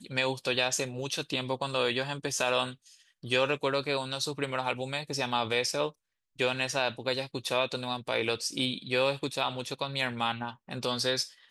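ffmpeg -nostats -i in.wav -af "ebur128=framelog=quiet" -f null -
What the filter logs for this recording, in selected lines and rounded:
Integrated loudness:
  I:         -30.4 LUFS
  Threshold: -40.5 LUFS
Loudness range:
  LRA:         0.8 LU
  Threshold: -50.6 LUFS
  LRA low:   -31.0 LUFS
  LRA high:  -30.1 LUFS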